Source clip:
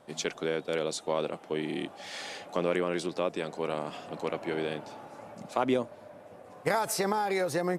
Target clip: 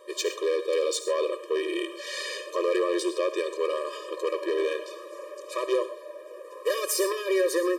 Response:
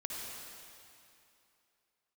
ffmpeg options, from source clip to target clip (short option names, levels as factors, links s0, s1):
-filter_complex "[0:a]asoftclip=type=tanh:threshold=0.0422,asplit=2[s0][s1];[1:a]atrim=start_sample=2205,atrim=end_sample=6174,highshelf=f=6300:g=7[s2];[s1][s2]afir=irnorm=-1:irlink=0,volume=0.596[s3];[s0][s3]amix=inputs=2:normalize=0,afftfilt=real='re*eq(mod(floor(b*sr/1024/320),2),1)':imag='im*eq(mod(floor(b*sr/1024/320),2),1)':win_size=1024:overlap=0.75,volume=2.11"